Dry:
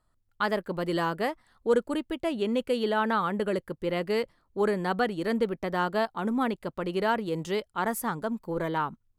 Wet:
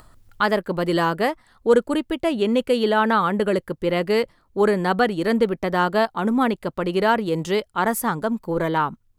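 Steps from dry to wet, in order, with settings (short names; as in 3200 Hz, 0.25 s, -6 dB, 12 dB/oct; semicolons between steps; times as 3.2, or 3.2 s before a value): upward compressor, threshold -44 dBFS; gain +7.5 dB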